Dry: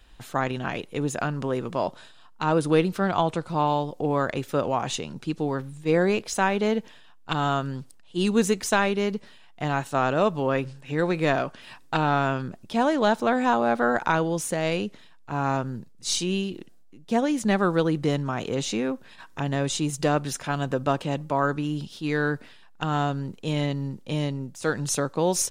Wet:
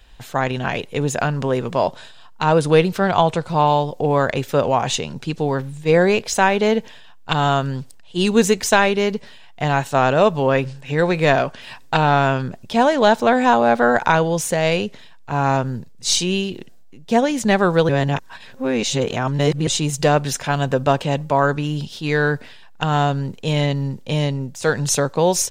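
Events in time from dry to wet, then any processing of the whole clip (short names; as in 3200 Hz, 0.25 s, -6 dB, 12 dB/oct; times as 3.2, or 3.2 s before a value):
17.89–19.67 reverse
whole clip: thirty-one-band EQ 200 Hz -4 dB, 315 Hz -8 dB, 1250 Hz -5 dB, 10000 Hz -5 dB; AGC gain up to 3 dB; gain +5.5 dB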